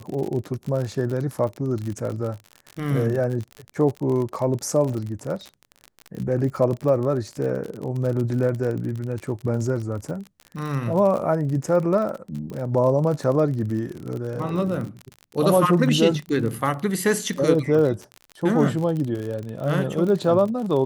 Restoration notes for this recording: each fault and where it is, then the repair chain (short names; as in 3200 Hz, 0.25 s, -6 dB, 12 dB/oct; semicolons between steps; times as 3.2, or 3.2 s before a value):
crackle 43/s -28 dBFS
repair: de-click